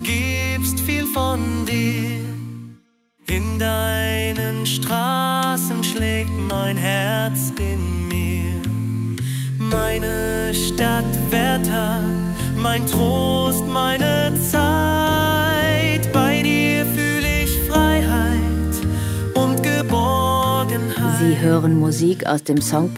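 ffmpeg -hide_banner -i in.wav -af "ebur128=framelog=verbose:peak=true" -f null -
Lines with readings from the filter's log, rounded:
Integrated loudness:
  I:         -19.2 LUFS
  Threshold: -29.3 LUFS
Loudness range:
  LRA:         5.1 LU
  Threshold: -39.4 LUFS
  LRA low:   -22.3 LUFS
  LRA high:  -17.2 LUFS
True peak:
  Peak:       -3.5 dBFS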